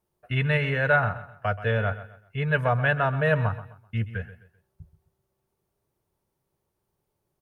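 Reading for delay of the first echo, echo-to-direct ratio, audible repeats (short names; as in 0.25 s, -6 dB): 0.129 s, -14.0 dB, 3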